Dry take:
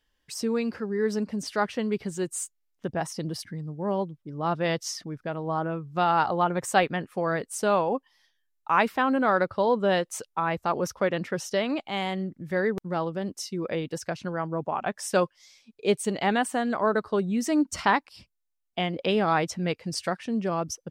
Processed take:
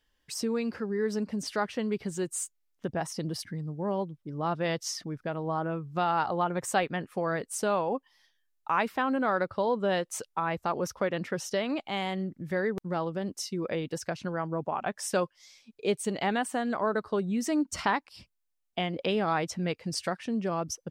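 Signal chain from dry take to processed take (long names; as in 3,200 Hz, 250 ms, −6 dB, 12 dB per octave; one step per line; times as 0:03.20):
downward compressor 1.5 to 1, threshold −31 dBFS, peak gain reduction 6 dB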